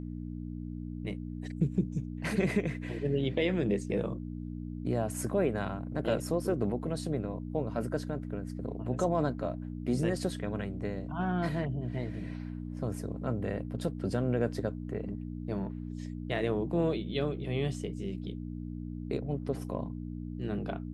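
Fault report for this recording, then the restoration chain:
hum 60 Hz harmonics 5 -39 dBFS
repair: de-hum 60 Hz, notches 5

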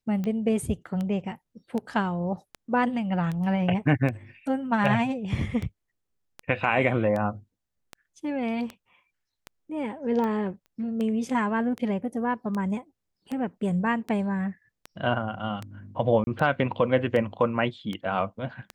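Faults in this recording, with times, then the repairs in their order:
tick 78 rpm -20 dBFS
10.66 pop -39 dBFS
16.24–16.27 gap 30 ms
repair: de-click; interpolate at 16.24, 30 ms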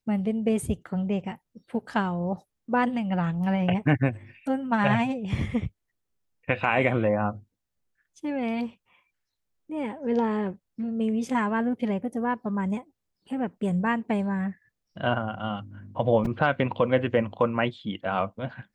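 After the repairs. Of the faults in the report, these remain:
none

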